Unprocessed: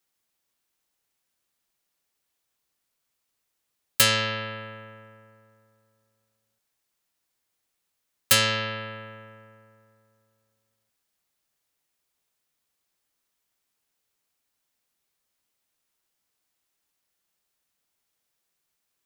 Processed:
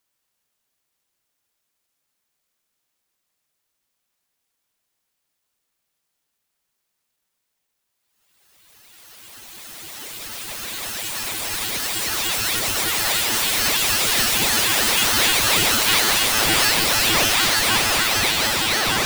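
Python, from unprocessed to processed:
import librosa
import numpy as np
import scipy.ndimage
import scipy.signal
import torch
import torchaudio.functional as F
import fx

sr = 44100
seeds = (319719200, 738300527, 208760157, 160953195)

y = fx.paulstretch(x, sr, seeds[0], factor=28.0, window_s=0.5, from_s=3.47)
y = fx.ring_lfo(y, sr, carrier_hz=820.0, swing_pct=75, hz=3.3)
y = y * 10.0 ** (5.5 / 20.0)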